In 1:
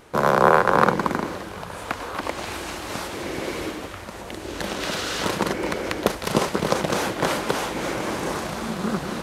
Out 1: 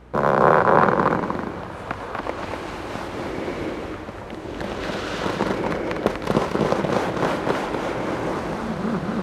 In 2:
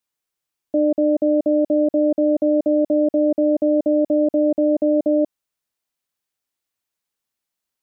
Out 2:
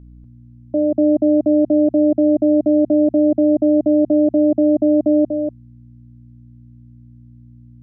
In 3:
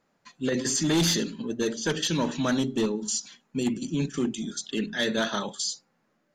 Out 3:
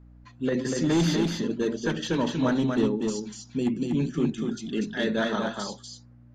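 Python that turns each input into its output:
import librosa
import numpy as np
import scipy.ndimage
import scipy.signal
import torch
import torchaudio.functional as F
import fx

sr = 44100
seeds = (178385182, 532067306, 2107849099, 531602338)

p1 = fx.lowpass(x, sr, hz=1600.0, slope=6)
p2 = fx.add_hum(p1, sr, base_hz=60, snr_db=22)
p3 = p2 + fx.echo_single(p2, sr, ms=242, db=-4.0, dry=0)
y = p3 * 10.0 ** (1.0 / 20.0)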